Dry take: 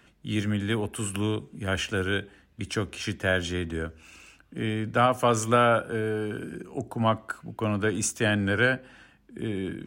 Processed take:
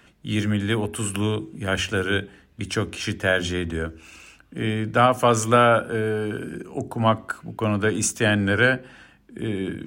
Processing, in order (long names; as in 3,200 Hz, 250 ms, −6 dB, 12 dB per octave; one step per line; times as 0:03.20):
hum removal 46.24 Hz, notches 9
level +4.5 dB